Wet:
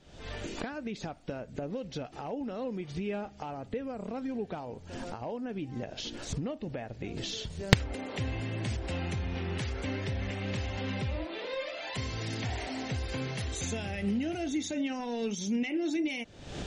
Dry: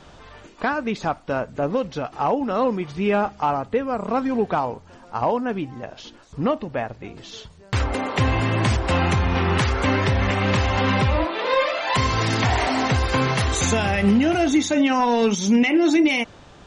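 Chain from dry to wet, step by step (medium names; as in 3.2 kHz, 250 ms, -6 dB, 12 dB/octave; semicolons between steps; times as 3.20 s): recorder AGC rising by 67 dB/s; peaking EQ 1.1 kHz -11.5 dB 0.97 oct; trim -13 dB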